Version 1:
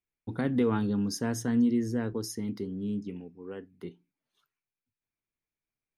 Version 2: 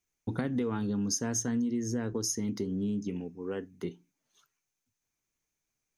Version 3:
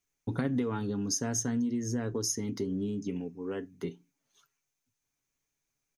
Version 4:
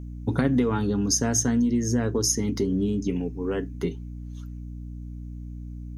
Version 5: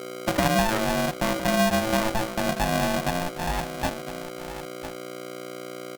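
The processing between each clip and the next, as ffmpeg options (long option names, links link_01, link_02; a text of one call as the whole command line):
ffmpeg -i in.wav -af "equalizer=frequency=6300:width=4:gain=14,acompressor=threshold=-34dB:ratio=6,volume=5.5dB" out.wav
ffmpeg -i in.wav -af "aecho=1:1:7.2:0.34" out.wav
ffmpeg -i in.wav -af "aeval=exprs='val(0)+0.00708*(sin(2*PI*60*n/s)+sin(2*PI*2*60*n/s)/2+sin(2*PI*3*60*n/s)/3+sin(2*PI*4*60*n/s)/4+sin(2*PI*5*60*n/s)/5)':channel_layout=same,volume=8dB" out.wav
ffmpeg -i in.wav -af "aecho=1:1:1007:0.237,aresample=8000,aresample=44100,aeval=exprs='val(0)*sgn(sin(2*PI*440*n/s))':channel_layout=same" out.wav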